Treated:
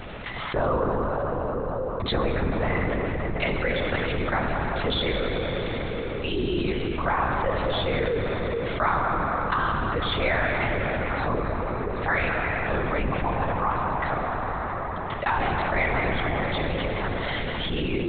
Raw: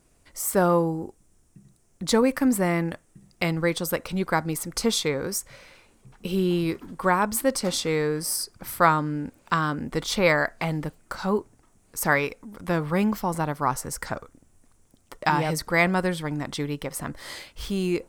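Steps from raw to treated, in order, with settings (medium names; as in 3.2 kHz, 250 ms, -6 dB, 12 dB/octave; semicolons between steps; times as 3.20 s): bass shelf 290 Hz -9.5 dB; hum notches 60/120/180/240/300/360/420 Hz; reverberation RT60 3.8 s, pre-delay 28 ms, DRR 3 dB; LPC vocoder at 8 kHz whisper; level flattener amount 70%; trim -5.5 dB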